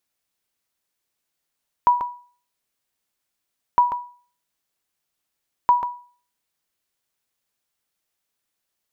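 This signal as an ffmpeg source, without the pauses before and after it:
-f lavfi -i "aevalsrc='0.398*(sin(2*PI*975*mod(t,1.91))*exp(-6.91*mod(t,1.91)/0.43)+0.376*sin(2*PI*975*max(mod(t,1.91)-0.14,0))*exp(-6.91*max(mod(t,1.91)-0.14,0)/0.43))':d=5.73:s=44100"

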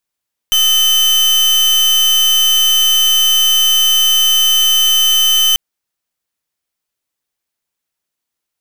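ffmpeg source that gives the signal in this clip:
-f lavfi -i "aevalsrc='0.282*(2*lt(mod(3060*t,1),0.38)-1)':d=5.04:s=44100"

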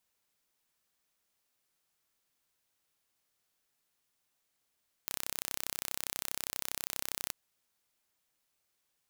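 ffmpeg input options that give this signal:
-f lavfi -i "aevalsrc='0.398*eq(mod(n,1361),0)':d=2.25:s=44100"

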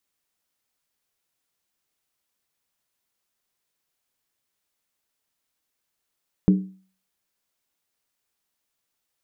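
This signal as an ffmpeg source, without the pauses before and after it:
-f lavfi -i "aevalsrc='0.316*pow(10,-3*t/0.42)*sin(2*PI*189*t)+0.126*pow(10,-3*t/0.333)*sin(2*PI*301.3*t)+0.0501*pow(10,-3*t/0.287)*sin(2*PI*403.7*t)+0.02*pow(10,-3*t/0.277)*sin(2*PI*433.9*t)+0.00794*pow(10,-3*t/0.258)*sin(2*PI*501.4*t)':d=0.63:s=44100"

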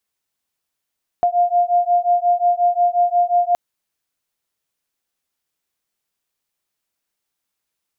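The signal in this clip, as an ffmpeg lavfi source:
-f lavfi -i "aevalsrc='0.15*(sin(2*PI*701*t)+sin(2*PI*706.6*t))':d=2.32:s=44100"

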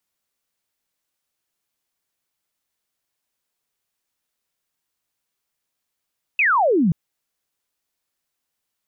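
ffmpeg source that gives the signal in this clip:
-f lavfi -i "aevalsrc='0.2*clip(t/0.002,0,1)*clip((0.53-t)/0.002,0,1)*sin(2*PI*2700*0.53/log(150/2700)*(exp(log(150/2700)*t/0.53)-1))':d=0.53:s=44100"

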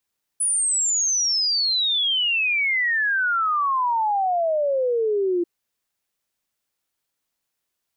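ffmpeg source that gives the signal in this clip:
-f lavfi -i "aevalsrc='0.119*clip(min(t,5.04-t)/0.01,0,1)*sin(2*PI*10000*5.04/log(340/10000)*(exp(log(340/10000)*t/5.04)-1))':d=5.04:s=44100"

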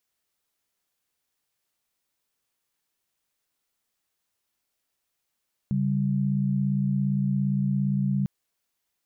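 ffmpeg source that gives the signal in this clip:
-f lavfi -i "aevalsrc='0.0596*(sin(2*PI*138.59*t)+sin(2*PI*196*t))':d=2.55:s=44100"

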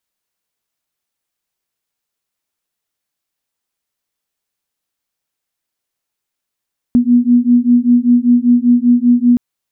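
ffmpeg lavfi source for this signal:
-f lavfi -i "aevalsrc='0.299*(sin(2*PI*240*t)+sin(2*PI*245.1*t))':d=2.42:s=44100"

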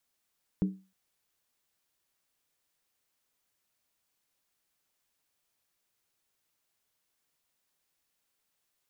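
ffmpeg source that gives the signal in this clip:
-f lavfi -i "aevalsrc='0.0891*pow(10,-3*t/0.32)*sin(2*PI*190*t)+0.0335*pow(10,-3*t/0.253)*sin(2*PI*302.9*t)+0.0126*pow(10,-3*t/0.219)*sin(2*PI*405.8*t)+0.00473*pow(10,-3*t/0.211)*sin(2*PI*436.2*t)+0.00178*pow(10,-3*t/0.196)*sin(2*PI*504.1*t)':d=0.31:s=44100"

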